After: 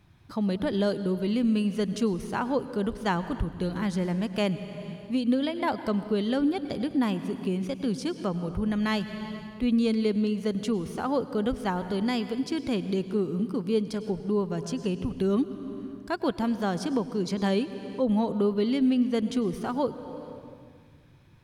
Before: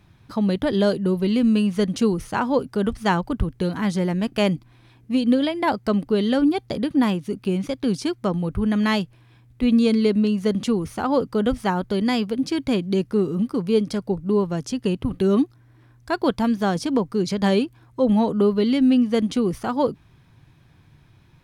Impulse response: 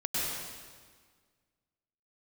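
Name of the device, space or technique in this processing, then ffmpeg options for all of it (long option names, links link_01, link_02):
ducked reverb: -filter_complex "[0:a]asplit=3[link_01][link_02][link_03];[1:a]atrim=start_sample=2205[link_04];[link_02][link_04]afir=irnorm=-1:irlink=0[link_05];[link_03]apad=whole_len=945334[link_06];[link_05][link_06]sidechaincompress=threshold=-27dB:ratio=8:attack=5.1:release=483,volume=-9dB[link_07];[link_01][link_07]amix=inputs=2:normalize=0,volume=-7dB"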